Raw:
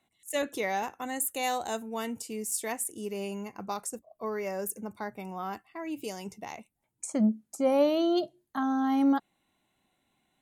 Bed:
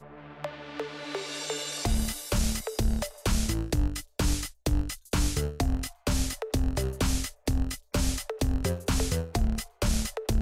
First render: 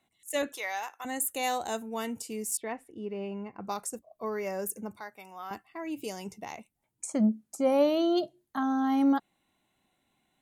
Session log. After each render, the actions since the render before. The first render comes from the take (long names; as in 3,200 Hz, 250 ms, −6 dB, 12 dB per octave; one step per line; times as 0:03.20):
0:00.52–0:01.05: high-pass filter 890 Hz
0:02.57–0:03.65: high-frequency loss of the air 390 metres
0:05.00–0:05.51: high-pass filter 1,300 Hz 6 dB per octave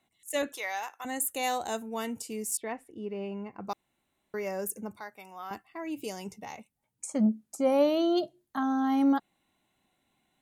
0:03.73–0:04.34: fill with room tone
0:06.36–0:07.26: notch comb filter 340 Hz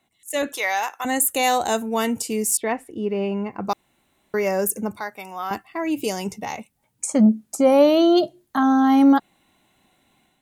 in parallel at −2 dB: brickwall limiter −24 dBFS, peak gain reduction 9.5 dB
on the sum: automatic gain control gain up to 7 dB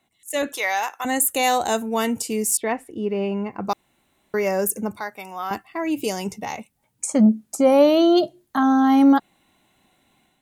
no processing that can be heard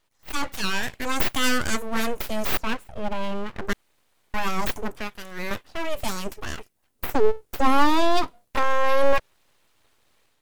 full-wave rectification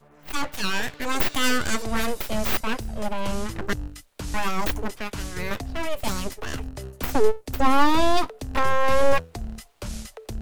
mix in bed −7 dB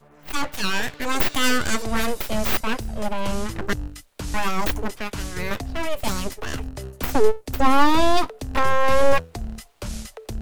level +2 dB